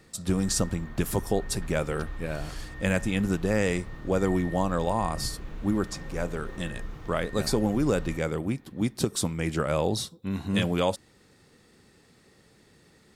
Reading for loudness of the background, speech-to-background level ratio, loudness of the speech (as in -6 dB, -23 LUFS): -42.0 LUFS, 13.5 dB, -28.5 LUFS